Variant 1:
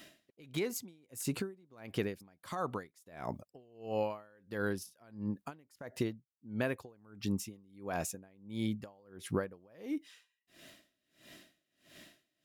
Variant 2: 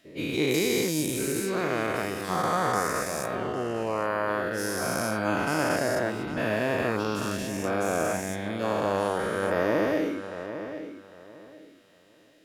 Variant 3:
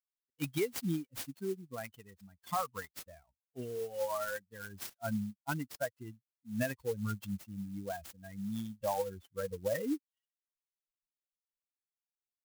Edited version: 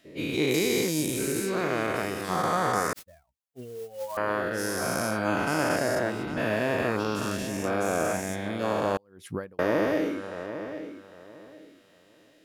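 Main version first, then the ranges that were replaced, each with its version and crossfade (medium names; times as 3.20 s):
2
2.93–4.17 s: from 3
8.97–9.59 s: from 1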